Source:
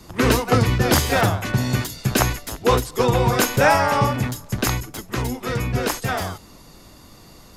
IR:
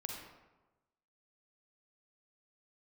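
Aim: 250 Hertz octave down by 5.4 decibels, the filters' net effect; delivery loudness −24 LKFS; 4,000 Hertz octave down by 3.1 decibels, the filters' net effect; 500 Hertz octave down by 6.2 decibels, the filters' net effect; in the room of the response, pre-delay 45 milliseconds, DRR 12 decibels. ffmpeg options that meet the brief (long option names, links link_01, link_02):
-filter_complex "[0:a]equalizer=frequency=250:width_type=o:gain=-5.5,equalizer=frequency=500:width_type=o:gain=-6,equalizer=frequency=4000:width_type=o:gain=-4,asplit=2[link_01][link_02];[1:a]atrim=start_sample=2205,adelay=45[link_03];[link_02][link_03]afir=irnorm=-1:irlink=0,volume=-11dB[link_04];[link_01][link_04]amix=inputs=2:normalize=0,volume=-1.5dB"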